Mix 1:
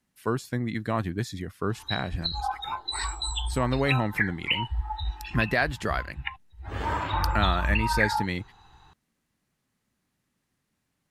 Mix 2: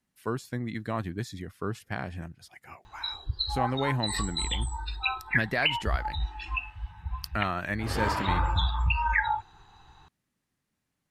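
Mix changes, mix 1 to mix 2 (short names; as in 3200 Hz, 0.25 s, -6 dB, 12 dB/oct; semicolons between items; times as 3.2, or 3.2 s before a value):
speech -4.0 dB; background: entry +1.15 s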